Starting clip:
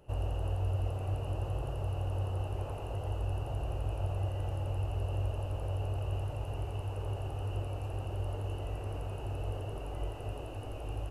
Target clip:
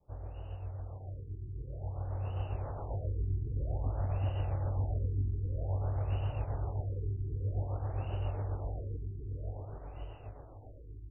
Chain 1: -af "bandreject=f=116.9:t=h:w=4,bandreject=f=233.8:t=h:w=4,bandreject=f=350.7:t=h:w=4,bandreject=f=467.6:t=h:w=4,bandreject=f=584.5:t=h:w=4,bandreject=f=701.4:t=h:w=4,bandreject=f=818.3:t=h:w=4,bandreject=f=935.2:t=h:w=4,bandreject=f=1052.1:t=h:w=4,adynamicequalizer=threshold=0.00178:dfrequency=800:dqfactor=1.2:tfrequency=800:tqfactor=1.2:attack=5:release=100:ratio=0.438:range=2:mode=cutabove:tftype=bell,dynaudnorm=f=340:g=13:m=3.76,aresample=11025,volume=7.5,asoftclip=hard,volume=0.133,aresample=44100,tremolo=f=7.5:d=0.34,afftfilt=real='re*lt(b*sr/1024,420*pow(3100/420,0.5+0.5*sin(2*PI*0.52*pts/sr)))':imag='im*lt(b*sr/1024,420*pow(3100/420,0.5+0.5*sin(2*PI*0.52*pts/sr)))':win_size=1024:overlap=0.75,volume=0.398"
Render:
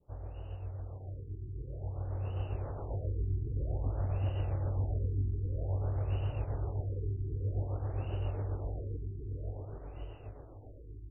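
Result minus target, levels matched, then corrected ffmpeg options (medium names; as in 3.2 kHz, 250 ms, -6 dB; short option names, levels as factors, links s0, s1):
1 kHz band -3.0 dB
-af "bandreject=f=116.9:t=h:w=4,bandreject=f=233.8:t=h:w=4,bandreject=f=350.7:t=h:w=4,bandreject=f=467.6:t=h:w=4,bandreject=f=584.5:t=h:w=4,bandreject=f=701.4:t=h:w=4,bandreject=f=818.3:t=h:w=4,bandreject=f=935.2:t=h:w=4,bandreject=f=1052.1:t=h:w=4,adynamicequalizer=threshold=0.00178:dfrequency=370:dqfactor=1.2:tfrequency=370:tqfactor=1.2:attack=5:release=100:ratio=0.438:range=2:mode=cutabove:tftype=bell,dynaudnorm=f=340:g=13:m=3.76,aresample=11025,volume=7.5,asoftclip=hard,volume=0.133,aresample=44100,tremolo=f=7.5:d=0.34,afftfilt=real='re*lt(b*sr/1024,420*pow(3100/420,0.5+0.5*sin(2*PI*0.52*pts/sr)))':imag='im*lt(b*sr/1024,420*pow(3100/420,0.5+0.5*sin(2*PI*0.52*pts/sr)))':win_size=1024:overlap=0.75,volume=0.398"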